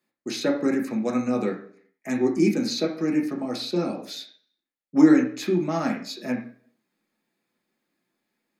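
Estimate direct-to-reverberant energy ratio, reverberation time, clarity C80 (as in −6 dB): −1.0 dB, 0.55 s, 13.0 dB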